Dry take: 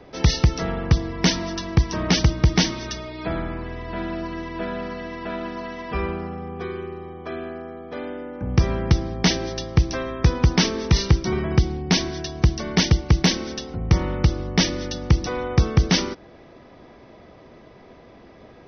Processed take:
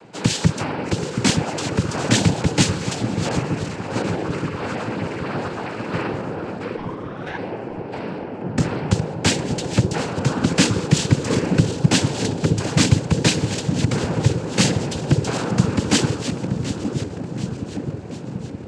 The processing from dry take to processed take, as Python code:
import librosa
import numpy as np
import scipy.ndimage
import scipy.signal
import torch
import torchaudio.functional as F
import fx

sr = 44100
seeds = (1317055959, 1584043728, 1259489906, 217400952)

y = fx.reverse_delay_fb(x, sr, ms=366, feedback_pct=72, wet_db=-11.5)
y = fx.noise_vocoder(y, sr, seeds[0], bands=8)
y = fx.ring_mod(y, sr, carrier_hz=fx.line((6.76, 490.0), (7.37, 1300.0)), at=(6.76, 7.37), fade=0.02)
y = fx.echo_wet_lowpass(y, sr, ms=920, feedback_pct=70, hz=550.0, wet_db=-6)
y = F.gain(torch.from_numpy(y), 2.0).numpy()